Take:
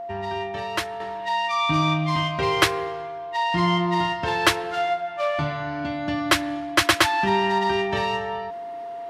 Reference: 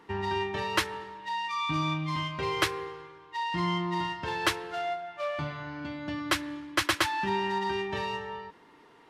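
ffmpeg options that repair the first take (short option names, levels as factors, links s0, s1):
-af "bandreject=f=690:w=30,asetnsamples=n=441:p=0,asendcmd='1 volume volume -8dB',volume=1"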